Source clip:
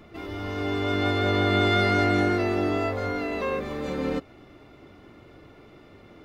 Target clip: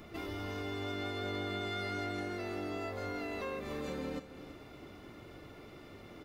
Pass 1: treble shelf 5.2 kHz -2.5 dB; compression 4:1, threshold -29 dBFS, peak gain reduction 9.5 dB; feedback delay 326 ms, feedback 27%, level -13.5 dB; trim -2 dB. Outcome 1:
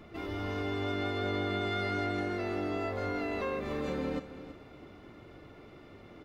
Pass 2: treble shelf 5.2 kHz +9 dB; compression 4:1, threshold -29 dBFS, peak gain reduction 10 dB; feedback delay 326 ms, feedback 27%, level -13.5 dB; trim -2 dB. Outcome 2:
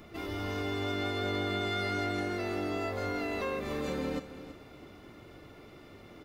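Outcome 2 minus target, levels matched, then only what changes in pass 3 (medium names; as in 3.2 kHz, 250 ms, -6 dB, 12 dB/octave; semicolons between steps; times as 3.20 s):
compression: peak gain reduction -5.5 dB
change: compression 4:1, threshold -36 dBFS, peak gain reduction 15.5 dB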